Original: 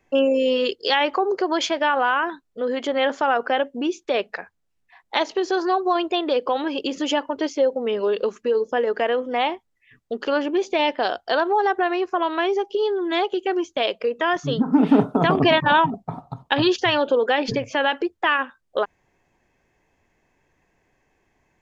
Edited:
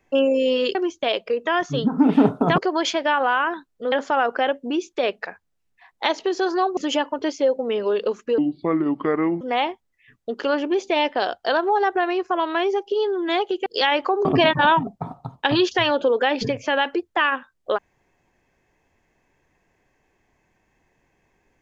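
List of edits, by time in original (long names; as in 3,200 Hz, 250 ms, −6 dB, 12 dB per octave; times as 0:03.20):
0:00.75–0:01.34: swap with 0:13.49–0:15.32
0:02.68–0:03.03: remove
0:05.88–0:06.94: remove
0:08.55–0:09.24: play speed 67%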